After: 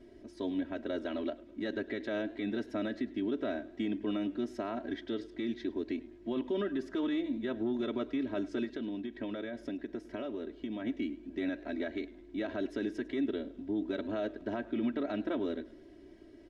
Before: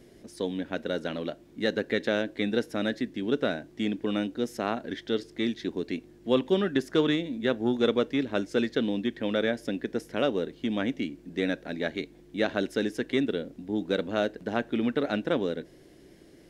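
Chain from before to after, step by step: treble shelf 7.6 kHz +4.5 dB; comb 3.1 ms, depth 98%; peak limiter -20 dBFS, peak gain reduction 11.5 dB; 8.64–10.87 s: compression, threshold -30 dBFS, peak gain reduction 6 dB; tape spacing loss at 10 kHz 21 dB; modulated delay 104 ms, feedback 44%, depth 100 cents, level -20 dB; trim -4 dB

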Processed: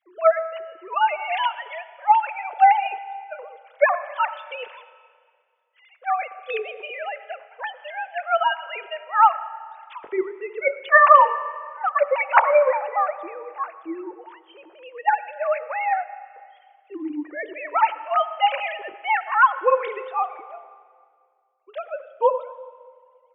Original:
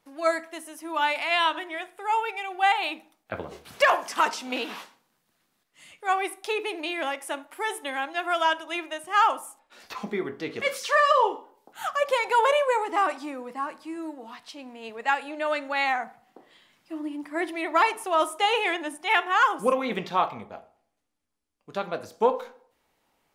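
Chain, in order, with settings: formants replaced by sine waves; algorithmic reverb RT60 2 s, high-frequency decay 0.8×, pre-delay 50 ms, DRR 14.5 dB; trim +4 dB

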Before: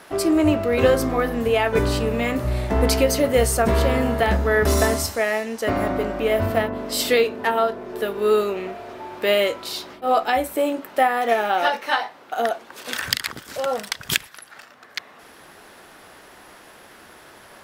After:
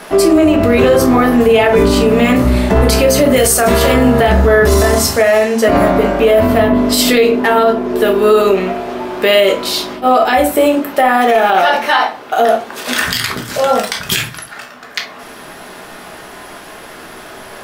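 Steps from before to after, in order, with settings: 3.36–3.94 s: tilt EQ +2 dB/octave; reverberation, pre-delay 5 ms, DRR 1.5 dB; loudness maximiser +12 dB; trim -1 dB

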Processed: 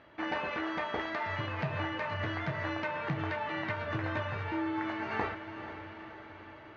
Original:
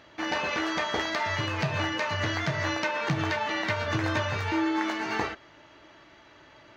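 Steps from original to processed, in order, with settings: low-pass 2.4 kHz 12 dB/octave; echo that smears into a reverb 476 ms, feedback 59%, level -14 dB; gain riding within 5 dB 0.5 s; trim -5.5 dB

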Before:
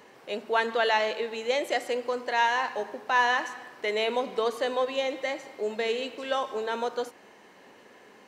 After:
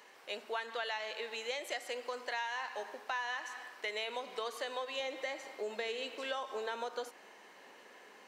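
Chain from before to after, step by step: high-pass 1.2 kHz 6 dB/octave, from 5.00 s 610 Hz; compression 6:1, threshold -34 dBFS, peak gain reduction 12.5 dB; trim -1 dB

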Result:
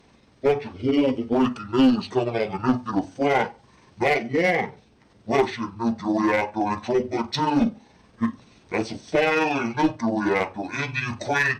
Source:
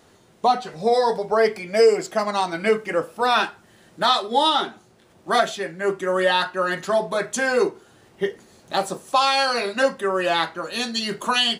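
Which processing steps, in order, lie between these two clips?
rotating-head pitch shifter -9.5 st; hum notches 50/100/150 Hz; one-sided clip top -16 dBFS

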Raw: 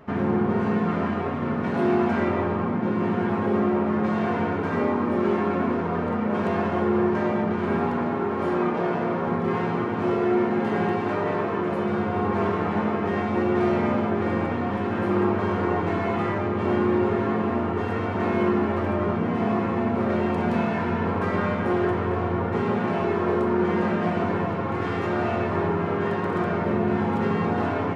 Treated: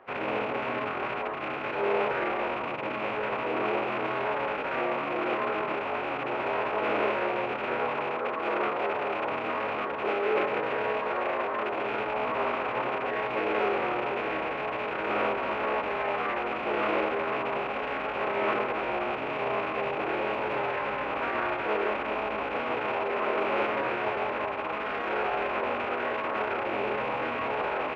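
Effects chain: rattle on loud lows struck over -29 dBFS, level -22 dBFS; formant-preserving pitch shift -9 st; three-band isolator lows -22 dB, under 400 Hz, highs -17 dB, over 3.5 kHz

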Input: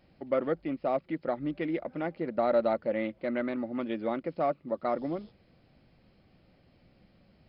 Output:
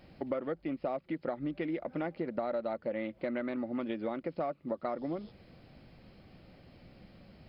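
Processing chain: compression 6:1, threshold -39 dBFS, peak gain reduction 17 dB; trim +6.5 dB

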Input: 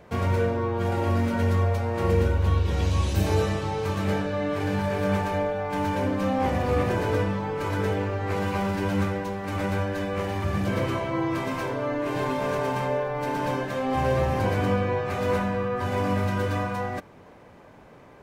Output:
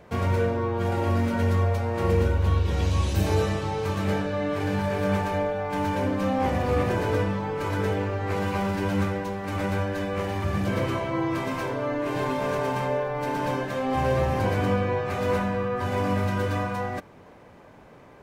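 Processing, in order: hard clipper -14 dBFS, distortion -36 dB

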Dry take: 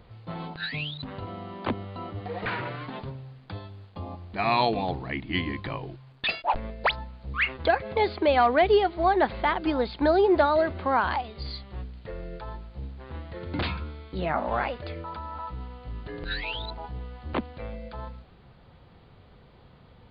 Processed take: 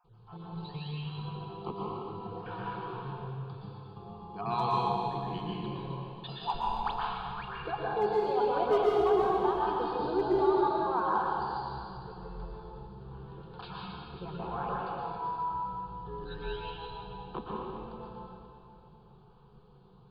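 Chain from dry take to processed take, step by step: random holes in the spectrogram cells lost 22%; treble shelf 2.2 kHz -7 dB; static phaser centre 400 Hz, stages 8; feedback comb 140 Hz, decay 0.36 s, harmonics all, mix 60%; hard clipper -23 dBFS, distortion -17 dB; on a send: echo whose repeats swap between lows and highs 134 ms, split 860 Hz, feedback 74%, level -8 dB; on the sum: plate-style reverb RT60 1.8 s, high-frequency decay 0.95×, pre-delay 105 ms, DRR -4.5 dB

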